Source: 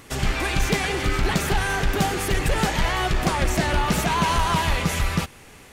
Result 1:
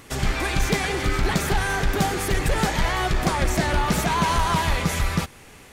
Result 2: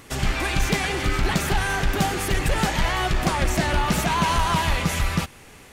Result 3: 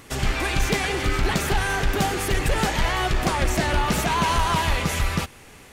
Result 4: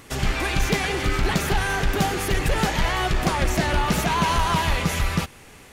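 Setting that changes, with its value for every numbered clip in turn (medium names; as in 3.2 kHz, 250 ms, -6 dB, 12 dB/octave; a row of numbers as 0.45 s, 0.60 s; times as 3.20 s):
dynamic bell, frequency: 2.8 kHz, 440 Hz, 170 Hz, 8.2 kHz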